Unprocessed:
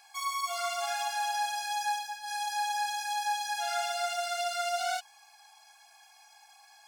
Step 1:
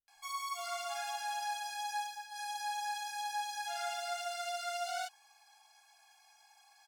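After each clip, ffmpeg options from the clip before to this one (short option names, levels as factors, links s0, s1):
-filter_complex "[0:a]acrossover=split=150[s0][s1];[s1]adelay=80[s2];[s0][s2]amix=inputs=2:normalize=0,volume=0.473"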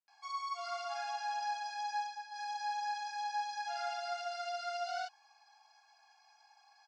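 -af "highpass=f=290:w=0.5412,highpass=f=290:w=1.3066,equalizer=f=300:t=q:w=4:g=5,equalizer=f=470:t=q:w=4:g=-5,equalizer=f=940:t=q:w=4:g=3,equalizer=f=2200:t=q:w=4:g=-5,equalizer=f=3400:t=q:w=4:g=-8,equalizer=f=4900:t=q:w=4:g=3,lowpass=f=5200:w=0.5412,lowpass=f=5200:w=1.3066"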